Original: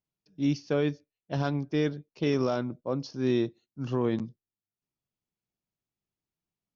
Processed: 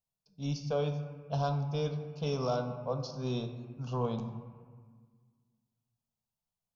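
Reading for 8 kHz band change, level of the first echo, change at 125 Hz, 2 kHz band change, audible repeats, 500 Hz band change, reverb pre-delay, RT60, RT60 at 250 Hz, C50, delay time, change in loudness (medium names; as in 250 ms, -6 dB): no reading, no echo, -0.5 dB, -10.0 dB, no echo, -4.5 dB, 3 ms, 1.6 s, 2.1 s, 7.5 dB, no echo, -5.0 dB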